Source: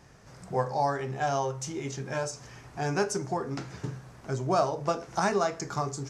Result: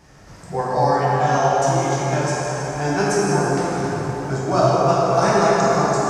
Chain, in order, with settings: plate-style reverb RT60 4.9 s, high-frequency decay 0.6×, DRR -7.5 dB; trim +3.5 dB

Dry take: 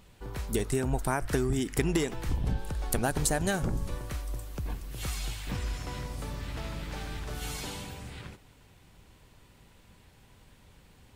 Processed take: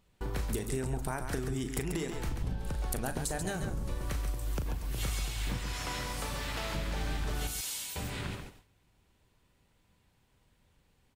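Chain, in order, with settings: 7.47–7.96 s: pre-emphasis filter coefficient 0.97; gate with hold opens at -44 dBFS; 5.58–6.75 s: bass shelf 380 Hz -12 dB; compression 6:1, threshold -41 dBFS, peak gain reduction 18 dB; loudspeakers at several distances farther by 13 m -10 dB, 47 m -7 dB; trim +8 dB

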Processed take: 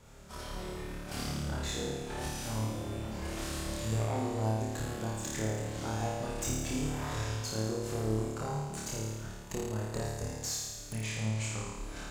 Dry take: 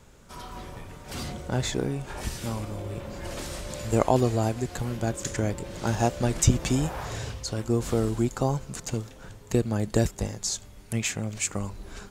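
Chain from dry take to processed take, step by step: compression 2.5:1, threshold -34 dBFS, peak gain reduction 14 dB; valve stage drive 28 dB, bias 0.6; 11.04–11.66 s: distance through air 56 m; on a send: flutter echo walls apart 4.7 m, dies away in 1.3 s; on the sum: trim -2 dB

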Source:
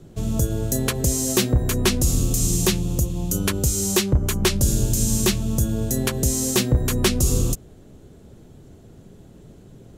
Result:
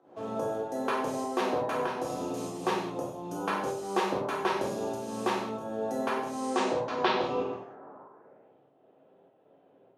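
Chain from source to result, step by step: high-pass 200 Hz 12 dB/octave; treble shelf 6.2 kHz -11.5 dB; band-stop 7.5 kHz, Q 12; in parallel at -1 dB: compression, threshold -34 dBFS, peak gain reduction 17 dB; on the sum: band-pass sweep 830 Hz -> 3.1 kHz, 7.87–8.52 s; volume shaper 97 bpm, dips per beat 1, -14 dB, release 251 ms; low-pass sweep 12 kHz -> 700 Hz, 6.30–8.28 s; on a send: flutter echo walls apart 8.7 m, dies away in 0.25 s; on the sum: gated-style reverb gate 230 ms falling, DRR -4.5 dB; trim +1.5 dB

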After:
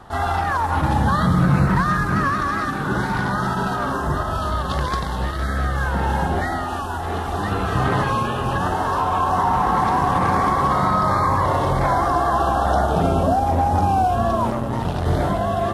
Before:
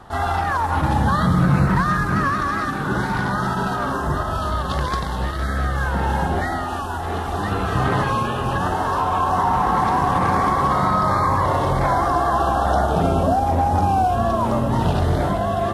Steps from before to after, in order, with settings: 14.50–15.06 s: valve stage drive 14 dB, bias 0.75

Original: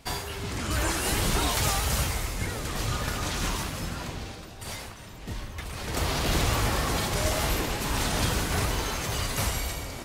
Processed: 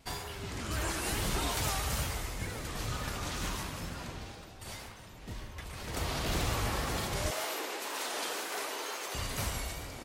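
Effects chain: 7.30–9.15 s: high-pass 350 Hz 24 dB/octave; speakerphone echo 140 ms, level -8 dB; wow and flutter 43 cents; trim -7 dB

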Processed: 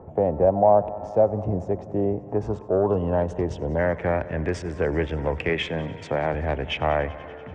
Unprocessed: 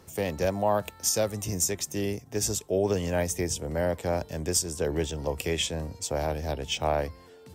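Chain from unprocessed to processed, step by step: local Wiener filter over 9 samples; 2.75–3.79 s: time-frequency box 1.1–2.6 kHz -14 dB; 5.49–6.34 s: high-pass 100 Hz 24 dB/octave; in parallel at +1.5 dB: compression, threshold -36 dBFS, peak gain reduction 15.5 dB; on the sum: saturation -13 dBFS, distortion -23 dB; low-pass sweep 730 Hz -> 2 kHz, 2.10–3.65 s; on a send: multi-head delay 96 ms, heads first and second, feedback 73%, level -22.5 dB; on the sum: resampled via 22.05 kHz; trim +2 dB

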